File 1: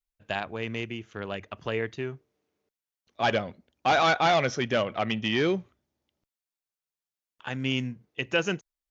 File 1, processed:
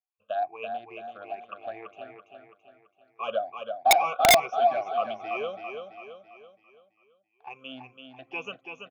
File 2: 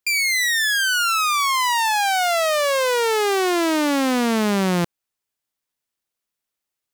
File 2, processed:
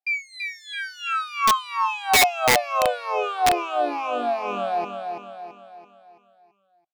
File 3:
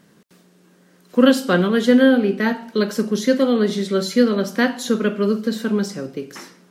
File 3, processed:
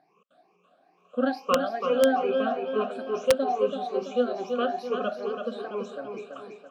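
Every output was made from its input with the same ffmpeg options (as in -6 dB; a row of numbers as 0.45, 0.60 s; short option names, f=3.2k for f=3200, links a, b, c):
-filter_complex "[0:a]afftfilt=real='re*pow(10,24/40*sin(2*PI*(0.78*log(max(b,1)*sr/1024/100)/log(2)-(2.3)*(pts-256)/sr)))':imag='im*pow(10,24/40*sin(2*PI*(0.78*log(max(b,1)*sr/1024/100)/log(2)-(2.3)*(pts-256)/sr)))':win_size=1024:overlap=0.75,asplit=3[a][b][c];[a]bandpass=f=730:t=q:w=8,volume=0dB[d];[b]bandpass=f=1.09k:t=q:w=8,volume=-6dB[e];[c]bandpass=f=2.44k:t=q:w=8,volume=-9dB[f];[d][e][f]amix=inputs=3:normalize=0,highshelf=f=6k:g=-5.5,asplit=2[g][h];[h]aecho=0:1:333|666|999|1332|1665|1998:0.501|0.236|0.111|0.052|0.0245|0.0115[i];[g][i]amix=inputs=2:normalize=0,aeval=exprs='(mod(3.55*val(0)+1,2)-1)/3.55':c=same"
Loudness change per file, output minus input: +2.0, -4.0, -9.0 LU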